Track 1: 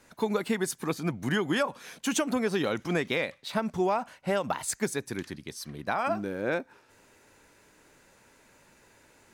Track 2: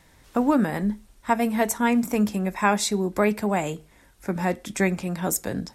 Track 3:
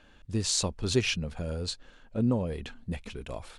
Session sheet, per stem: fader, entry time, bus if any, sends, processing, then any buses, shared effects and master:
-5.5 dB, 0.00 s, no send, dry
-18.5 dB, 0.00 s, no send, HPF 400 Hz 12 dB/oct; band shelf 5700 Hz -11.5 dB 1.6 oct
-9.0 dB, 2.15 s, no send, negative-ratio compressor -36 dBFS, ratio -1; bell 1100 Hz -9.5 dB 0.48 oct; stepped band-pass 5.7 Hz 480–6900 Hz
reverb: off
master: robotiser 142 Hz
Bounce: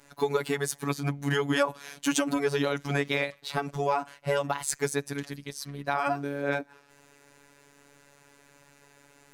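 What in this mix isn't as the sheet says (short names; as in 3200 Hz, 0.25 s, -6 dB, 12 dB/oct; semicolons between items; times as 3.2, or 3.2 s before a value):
stem 1 -5.5 dB -> +3.5 dB; stem 2 -18.5 dB -> -29.5 dB; stem 3: muted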